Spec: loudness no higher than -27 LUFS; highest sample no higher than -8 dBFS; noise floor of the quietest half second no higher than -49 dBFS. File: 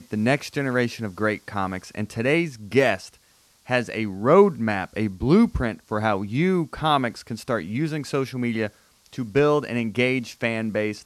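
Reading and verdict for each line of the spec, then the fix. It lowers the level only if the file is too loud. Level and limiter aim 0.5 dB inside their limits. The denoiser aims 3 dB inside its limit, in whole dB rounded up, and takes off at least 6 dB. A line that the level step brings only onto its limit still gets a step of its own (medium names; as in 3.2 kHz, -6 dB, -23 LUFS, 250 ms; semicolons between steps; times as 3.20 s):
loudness -23.5 LUFS: fail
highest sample -3.5 dBFS: fail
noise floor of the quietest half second -59 dBFS: pass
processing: trim -4 dB; peak limiter -8.5 dBFS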